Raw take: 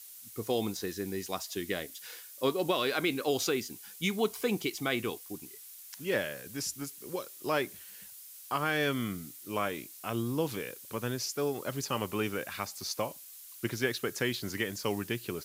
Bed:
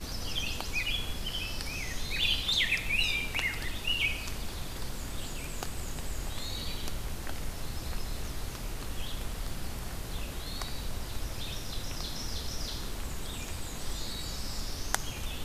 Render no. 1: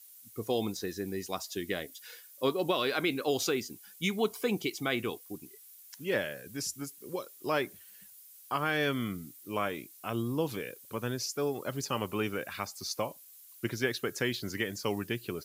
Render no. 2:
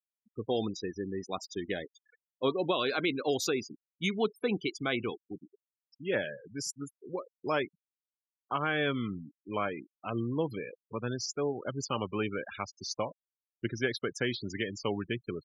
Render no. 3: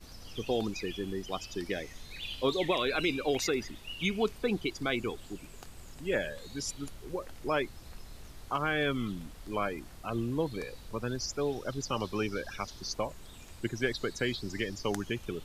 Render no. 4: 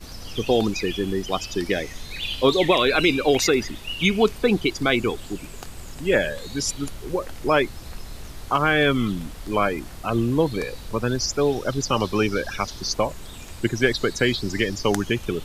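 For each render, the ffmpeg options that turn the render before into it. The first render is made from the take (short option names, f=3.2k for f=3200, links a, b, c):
-af "afftdn=nr=8:nf=-50"
-af "afftfilt=real='re*gte(hypot(re,im),0.0178)':imag='im*gte(hypot(re,im),0.0178)':win_size=1024:overlap=0.75,bandreject=f=1.9k:w=21"
-filter_complex "[1:a]volume=-12dB[a];[0:a][a]amix=inputs=2:normalize=0"
-af "volume=11dB"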